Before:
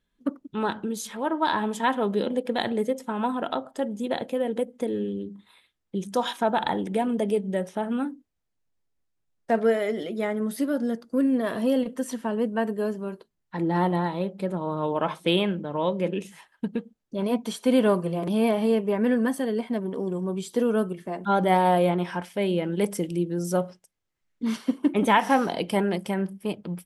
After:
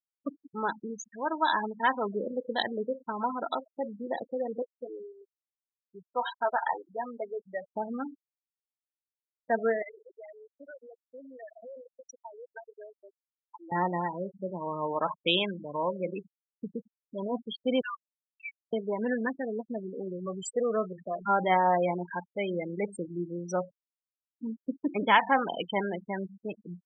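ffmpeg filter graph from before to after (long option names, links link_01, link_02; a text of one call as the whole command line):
ffmpeg -i in.wav -filter_complex "[0:a]asettb=1/sr,asplit=3[link_01][link_02][link_03];[link_01]atrim=end=4.624[link_04];[link_02]atrim=start=4.62:end=7.72,asetpts=PTS-STARTPTS,afade=type=in:duration=0.004:curve=qsin,afade=type=out:start_time=3.096:duration=0.004:curve=qsin,bandpass=frequency=1300:width_type=q:width=0.69,asplit=2[link_05][link_06];[link_06]adelay=12,volume=-6.5dB[link_07];[link_05][link_07]amix=inputs=2:normalize=0,atrim=end_sample=136710[link_08];[link_03]atrim=start=7.716[link_09];[link_04][link_08]acrossfade=duration=0.004:curve1=hsin:curve2=qsin[link_10];[link_10][link_09]acrossfade=duration=0.004:curve1=qsin:curve2=hsin,asettb=1/sr,asplit=3[link_11][link_12][link_13];[link_11]atrim=end=9.824[link_14];[link_12]atrim=start=9.82:end=13.72,asetpts=PTS-STARTPTS,afade=type=in:duration=0.004:curve=qsin,afade=type=out:start_time=3.896:duration=0.004:curve=qsin,highpass=740,lowpass=5500,acompressor=threshold=-35dB:ratio=5:attack=3.2:release=140:knee=1:detection=peak[link_15];[link_13]atrim=start=13.716[link_16];[link_14][link_15]acrossfade=duration=0.004:curve1=hsin:curve2=qsin[link_17];[link_17][link_16]acrossfade=duration=0.004:curve1=qsin:curve2=hsin,asettb=1/sr,asplit=3[link_18][link_19][link_20];[link_18]atrim=end=17.814[link_21];[link_19]atrim=start=17.81:end=18.73,asetpts=PTS-STARTPTS,afade=type=in:duration=0.004:curve=qsin,afade=type=out:start_time=0.916:duration=0.004:curve=qsin,tremolo=f=40:d=0.333,asuperpass=centerf=2100:order=12:qfactor=0.76[link_22];[link_20]atrim=start=18.726[link_23];[link_21][link_22]acrossfade=duration=0.004:curve1=hsin:curve2=qsin[link_24];[link_24][link_23]acrossfade=duration=0.004:curve1=qsin:curve2=hsin,asettb=1/sr,asplit=3[link_25][link_26][link_27];[link_25]atrim=end=20.264[link_28];[link_26]atrim=start=20.26:end=21.28,asetpts=PTS-STARTPTS,afade=type=in:duration=0.004:curve=qsin,afade=type=out:start_time=1.016:duration=0.004:curve=qsin,aeval=exprs='val(0)+0.5*0.0133*sgn(val(0))':channel_layout=same,highshelf=frequency=10000:gain=3.5,aecho=1:1:1.7:0.55,atrim=end_sample=44982[link_29];[link_27]atrim=start=21.276[link_30];[link_28][link_29]acrossfade=duration=0.004:curve1=hsin:curve2=qsin[link_31];[link_31][link_30]acrossfade=duration=0.004:curve1=qsin:curve2=hsin,afftfilt=real='re*gte(hypot(re,im),0.0631)':imag='im*gte(hypot(re,im),0.0631)':win_size=1024:overlap=0.75,tiltshelf=frequency=640:gain=-6.5,volume=-4dB" out.wav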